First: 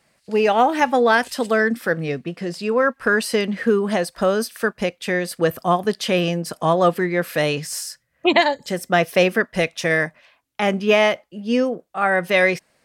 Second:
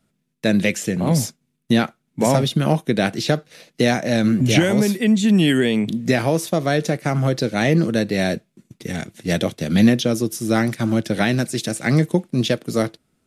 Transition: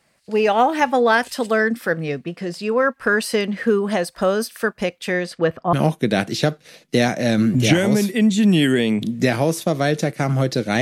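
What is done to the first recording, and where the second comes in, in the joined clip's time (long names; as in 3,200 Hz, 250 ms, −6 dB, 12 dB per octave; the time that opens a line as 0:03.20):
first
0:05.20–0:05.73: low-pass filter 8,400 Hz → 1,400 Hz
0:05.73: continue with second from 0:02.59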